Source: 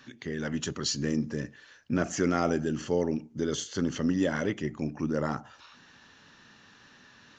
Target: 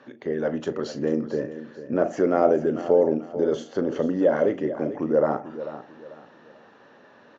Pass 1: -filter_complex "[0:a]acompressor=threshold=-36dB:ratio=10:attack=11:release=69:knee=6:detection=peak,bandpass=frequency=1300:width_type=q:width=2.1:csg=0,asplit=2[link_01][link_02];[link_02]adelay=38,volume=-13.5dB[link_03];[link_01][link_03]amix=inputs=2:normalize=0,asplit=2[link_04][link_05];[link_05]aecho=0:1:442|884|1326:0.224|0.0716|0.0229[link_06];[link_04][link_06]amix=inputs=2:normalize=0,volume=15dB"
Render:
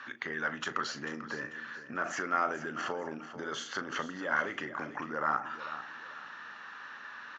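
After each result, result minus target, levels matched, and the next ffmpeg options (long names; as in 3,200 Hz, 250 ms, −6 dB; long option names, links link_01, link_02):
1,000 Hz band +9.5 dB; downward compressor: peak gain reduction +9.5 dB
-filter_complex "[0:a]acompressor=threshold=-36dB:ratio=10:attack=11:release=69:knee=6:detection=peak,bandpass=frequency=550:width_type=q:width=2.1:csg=0,asplit=2[link_01][link_02];[link_02]adelay=38,volume=-13.5dB[link_03];[link_01][link_03]amix=inputs=2:normalize=0,asplit=2[link_04][link_05];[link_05]aecho=0:1:442|884|1326:0.224|0.0716|0.0229[link_06];[link_04][link_06]amix=inputs=2:normalize=0,volume=15dB"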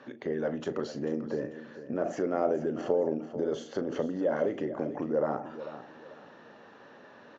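downward compressor: peak gain reduction +9.5 dB
-filter_complex "[0:a]acompressor=threshold=-25dB:ratio=10:attack=11:release=69:knee=6:detection=peak,bandpass=frequency=550:width_type=q:width=2.1:csg=0,asplit=2[link_01][link_02];[link_02]adelay=38,volume=-13.5dB[link_03];[link_01][link_03]amix=inputs=2:normalize=0,asplit=2[link_04][link_05];[link_05]aecho=0:1:442|884|1326:0.224|0.0716|0.0229[link_06];[link_04][link_06]amix=inputs=2:normalize=0,volume=15dB"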